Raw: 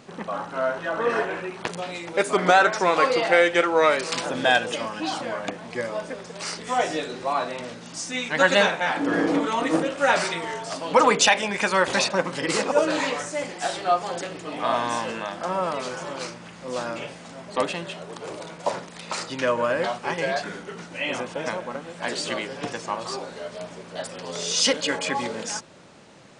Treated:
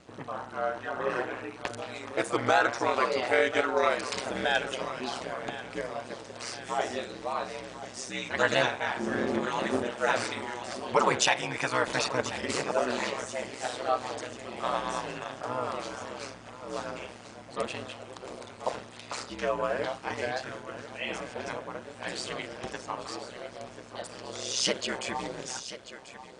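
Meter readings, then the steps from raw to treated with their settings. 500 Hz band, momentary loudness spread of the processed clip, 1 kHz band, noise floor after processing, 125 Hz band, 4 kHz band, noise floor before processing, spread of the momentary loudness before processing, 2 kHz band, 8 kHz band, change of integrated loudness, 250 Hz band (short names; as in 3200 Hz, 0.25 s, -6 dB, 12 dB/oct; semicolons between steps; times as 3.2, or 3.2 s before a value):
-7.0 dB, 15 LU, -7.0 dB, -47 dBFS, -5.0 dB, -7.0 dB, -43 dBFS, 15 LU, -7.0 dB, -6.5 dB, -7.0 dB, -7.5 dB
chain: thinning echo 1.037 s, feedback 41%, high-pass 230 Hz, level -13 dB; ring modulator 64 Hz; gain -4 dB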